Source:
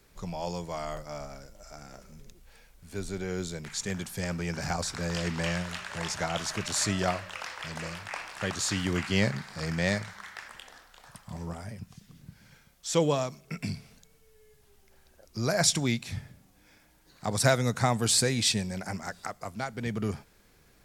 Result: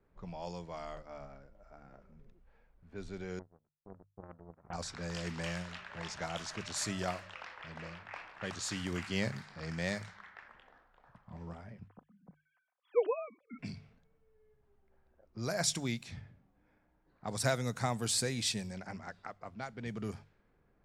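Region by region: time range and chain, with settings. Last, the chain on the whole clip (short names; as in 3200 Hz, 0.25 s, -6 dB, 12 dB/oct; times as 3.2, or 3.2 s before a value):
3.39–4.73 brick-wall FIR low-pass 1400 Hz + power-law curve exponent 3
11.88–13.59 sine-wave speech + comb 4 ms, depth 36%
whole clip: notches 50/100/150 Hz; low-pass opened by the level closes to 1200 Hz, open at -25.5 dBFS; gain -8 dB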